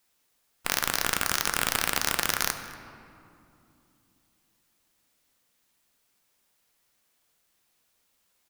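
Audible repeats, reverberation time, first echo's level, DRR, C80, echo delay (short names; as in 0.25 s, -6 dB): 1, 2.6 s, -21.5 dB, 7.0 dB, 10.0 dB, 0.235 s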